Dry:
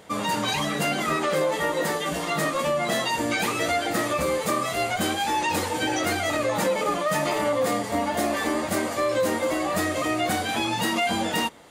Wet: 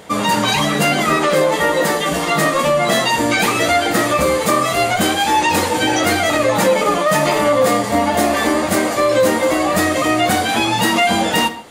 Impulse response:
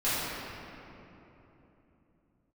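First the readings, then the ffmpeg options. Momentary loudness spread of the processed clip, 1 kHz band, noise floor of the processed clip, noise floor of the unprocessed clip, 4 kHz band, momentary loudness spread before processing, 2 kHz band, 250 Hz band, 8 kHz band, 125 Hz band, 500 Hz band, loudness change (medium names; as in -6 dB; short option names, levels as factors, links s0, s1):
2 LU, +9.5 dB, -21 dBFS, -30 dBFS, +9.5 dB, 2 LU, +9.5 dB, +9.5 dB, +9.0 dB, +9.5 dB, +9.5 dB, +9.5 dB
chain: -filter_complex "[0:a]asplit=2[s0][s1];[1:a]atrim=start_sample=2205,atrim=end_sample=6174,asetrate=37926,aresample=44100[s2];[s1][s2]afir=irnorm=-1:irlink=0,volume=0.0841[s3];[s0][s3]amix=inputs=2:normalize=0,volume=2.66"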